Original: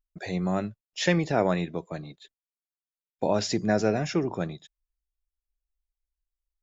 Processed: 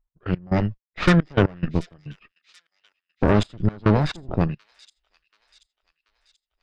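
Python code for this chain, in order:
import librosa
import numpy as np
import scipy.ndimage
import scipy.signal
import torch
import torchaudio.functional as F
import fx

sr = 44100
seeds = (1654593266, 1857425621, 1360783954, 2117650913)

p1 = fx.dynamic_eq(x, sr, hz=5200.0, q=0.89, threshold_db=-43.0, ratio=4.0, max_db=-3)
p2 = fx.cheby_harmonics(p1, sr, harmonics=(8,), levels_db=(-13,), full_scale_db=-8.5)
p3 = fx.low_shelf(p2, sr, hz=160.0, db=5.0)
p4 = 10.0 ** (-22.5 / 20.0) * np.tanh(p3 / 10.0 ** (-22.5 / 20.0))
p5 = p3 + (p4 * 10.0 ** (-11.0 / 20.0))
p6 = fx.step_gate(p5, sr, bpm=175, pattern='x..x..xxx..xx', floor_db=-24.0, edge_ms=4.5)
p7 = fx.env_lowpass(p6, sr, base_hz=1900.0, full_db=-18.0)
p8 = fx.formant_shift(p7, sr, semitones=-6)
p9 = p8 + fx.echo_wet_highpass(p8, sr, ms=733, feedback_pct=53, hz=4800.0, wet_db=-11.0, dry=0)
y = p9 * 10.0 ** (3.5 / 20.0)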